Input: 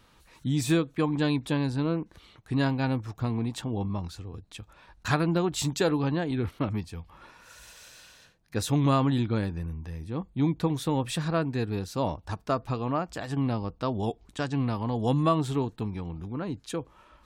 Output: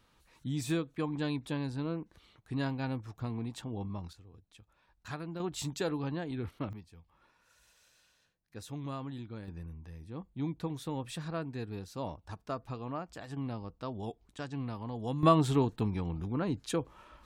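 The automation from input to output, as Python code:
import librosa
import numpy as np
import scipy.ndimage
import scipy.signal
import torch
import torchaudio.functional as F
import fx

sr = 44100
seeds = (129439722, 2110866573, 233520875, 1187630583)

y = fx.gain(x, sr, db=fx.steps((0.0, -8.0), (4.13, -15.5), (5.4, -8.5), (6.73, -16.5), (9.48, -10.0), (15.23, 0.5)))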